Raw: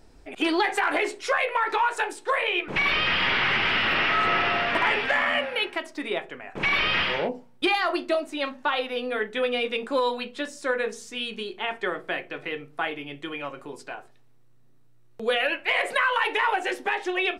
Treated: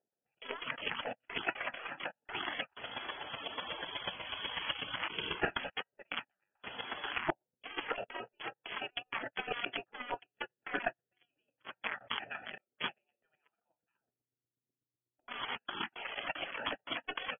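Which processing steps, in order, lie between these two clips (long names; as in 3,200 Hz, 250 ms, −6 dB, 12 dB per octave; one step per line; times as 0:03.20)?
adaptive Wiener filter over 41 samples
0:15.53–0:16.44: mains-hum notches 60/120/180/240/300/360/420 Hz
gate on every frequency bin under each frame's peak −20 dB weak
noise gate −46 dBFS, range −42 dB
low-shelf EQ 150 Hz −11.5 dB
compressor whose output falls as the input rises −51 dBFS, ratio −1
square-wave tremolo 8.1 Hz, depth 60%, duty 15%
linear-phase brick-wall low-pass 3,400 Hz
0:11.97–0:12.58: level that may fall only so fast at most 23 dB per second
level +18 dB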